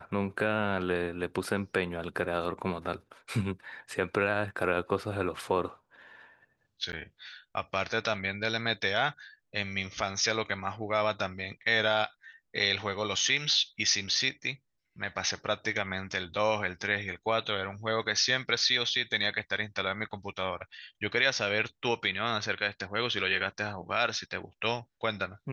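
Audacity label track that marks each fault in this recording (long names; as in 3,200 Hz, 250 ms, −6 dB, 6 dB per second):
6.920000	6.930000	drop-out 9.9 ms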